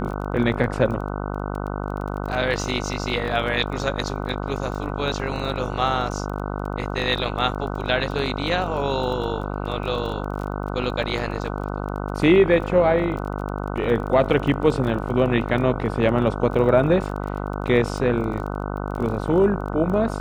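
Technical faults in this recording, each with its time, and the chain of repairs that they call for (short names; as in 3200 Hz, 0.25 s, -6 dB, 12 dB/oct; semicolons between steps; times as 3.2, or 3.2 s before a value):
buzz 50 Hz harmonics 30 -28 dBFS
crackle 21/s -30 dBFS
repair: de-click; de-hum 50 Hz, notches 30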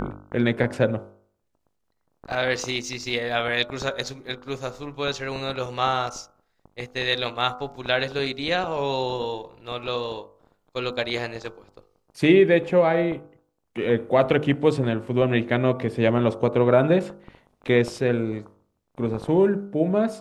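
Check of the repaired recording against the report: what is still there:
none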